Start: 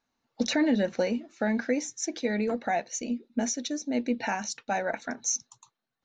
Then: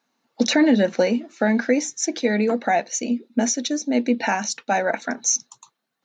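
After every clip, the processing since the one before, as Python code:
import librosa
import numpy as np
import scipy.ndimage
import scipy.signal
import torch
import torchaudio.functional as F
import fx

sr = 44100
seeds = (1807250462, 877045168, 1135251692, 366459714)

y = scipy.signal.sosfilt(scipy.signal.butter(4, 160.0, 'highpass', fs=sr, output='sos'), x)
y = y * librosa.db_to_amplitude(8.0)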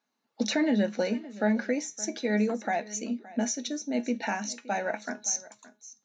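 y = fx.comb_fb(x, sr, f0_hz=210.0, decay_s=0.25, harmonics='all', damping=0.0, mix_pct=60)
y = y + 10.0 ** (-19.0 / 20.0) * np.pad(y, (int(569 * sr / 1000.0), 0))[:len(y)]
y = y * librosa.db_to_amplitude(-2.5)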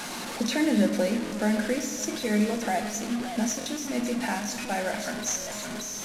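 y = fx.delta_mod(x, sr, bps=64000, step_db=-30.0)
y = fx.room_shoebox(y, sr, seeds[0], volume_m3=1300.0, walls='mixed', distance_m=0.92)
y = fx.buffer_glitch(y, sr, at_s=(1.25, 3.59, 5.4), block=1024, repeats=2)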